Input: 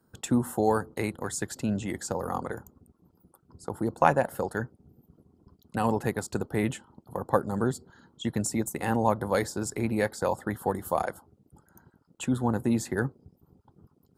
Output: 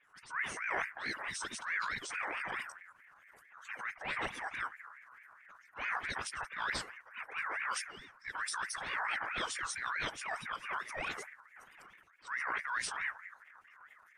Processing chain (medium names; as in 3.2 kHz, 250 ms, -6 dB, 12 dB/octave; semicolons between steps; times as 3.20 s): phase dispersion highs, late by 41 ms, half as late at 2.6 kHz; reverse; compression 6:1, threshold -36 dBFS, peak gain reduction 18.5 dB; reverse; formant-preserving pitch shift -11 st; transient shaper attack -10 dB, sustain +6 dB; ring modulator with a swept carrier 1.6 kHz, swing 25%, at 4.6 Hz; trim +6.5 dB